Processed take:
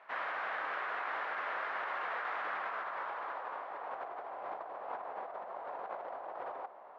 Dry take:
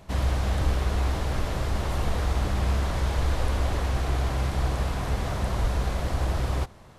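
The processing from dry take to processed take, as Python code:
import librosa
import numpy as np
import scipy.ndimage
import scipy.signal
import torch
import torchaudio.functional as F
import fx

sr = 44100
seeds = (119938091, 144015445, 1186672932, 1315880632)

p1 = fx.filter_sweep_bandpass(x, sr, from_hz=1600.0, to_hz=760.0, start_s=2.4, end_s=4.22, q=1.6)
p2 = fx.over_compress(p1, sr, threshold_db=-41.0, ratio=-0.5)
p3 = fx.bandpass_edges(p2, sr, low_hz=520.0, high_hz=2100.0)
p4 = p3 + fx.echo_single(p3, sr, ms=1200, db=-17.0, dry=0)
y = F.gain(torch.from_numpy(p4), 3.0).numpy()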